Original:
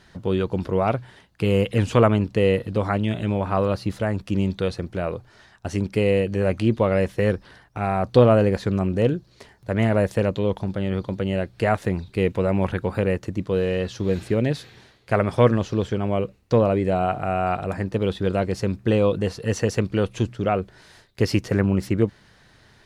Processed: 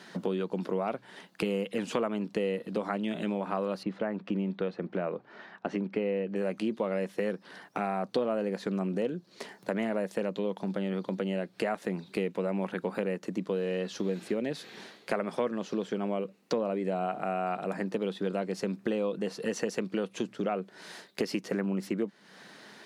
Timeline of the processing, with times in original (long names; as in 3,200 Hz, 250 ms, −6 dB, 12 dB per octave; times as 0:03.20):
0:03.83–0:06.36: low-pass filter 2,400 Hz
whole clip: Chebyshev high-pass filter 180 Hz, order 4; downward compressor 4 to 1, threshold −36 dBFS; level +5.5 dB